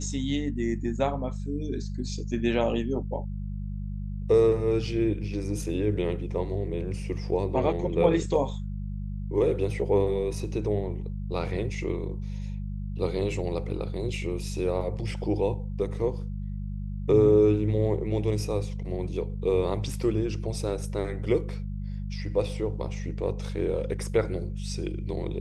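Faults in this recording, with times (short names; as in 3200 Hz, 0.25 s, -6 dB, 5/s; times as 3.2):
hum 50 Hz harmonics 4 -33 dBFS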